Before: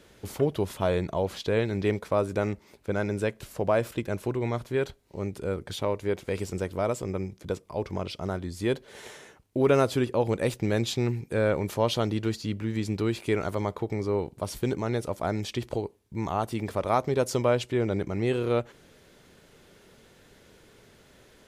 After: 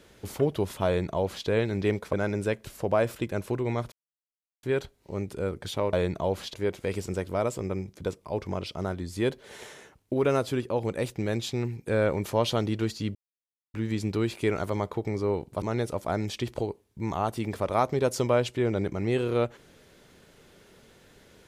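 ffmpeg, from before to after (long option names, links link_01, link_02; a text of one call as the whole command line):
ffmpeg -i in.wav -filter_complex "[0:a]asplit=9[link_01][link_02][link_03][link_04][link_05][link_06][link_07][link_08][link_09];[link_01]atrim=end=2.132[link_10];[link_02]atrim=start=2.888:end=4.68,asetpts=PTS-STARTPTS,afade=type=out:start_time=1.788:duration=0.004:curve=hsin,apad=pad_dur=0.71[link_11];[link_03]atrim=start=4.68:end=5.982,asetpts=PTS-STARTPTS,afade=type=in:duration=0.004:curve=hsin[link_12];[link_04]atrim=start=0.858:end=1.472[link_13];[link_05]atrim=start=5.978:end=9.582[link_14];[link_06]atrim=start=9.578:end=11.302,asetpts=PTS-STARTPTS,volume=-3dB[link_15];[link_07]atrim=start=11.298:end=12.59,asetpts=PTS-STARTPTS,afade=type=out:start_time=1.288:duration=0.004:curve=hsin,apad=pad_dur=0.59[link_16];[link_08]atrim=start=12.59:end=14.472,asetpts=PTS-STARTPTS,afade=type=in:duration=0.004:curve=hsin[link_17];[link_09]atrim=start=14.768[link_18];[link_11][link_12]concat=n=2:v=0:a=1[link_19];[link_10][link_19]acrossfade=duration=0.004:curve1=hsin:curve2=hsin[link_20];[link_20][link_13]acrossfade=duration=0.004:curve1=hsin:curve2=hsin[link_21];[link_21][link_14]acrossfade=duration=0.004:curve1=hsin:curve2=hsin[link_22];[link_22][link_15]acrossfade=duration=0.004:curve1=hsin:curve2=hsin[link_23];[link_16][link_17]concat=n=2:v=0:a=1[link_24];[link_23][link_24]acrossfade=duration=0.004:curve1=hsin:curve2=hsin[link_25];[link_25][link_18]acrossfade=duration=0.004:curve1=hsin:curve2=hsin" out.wav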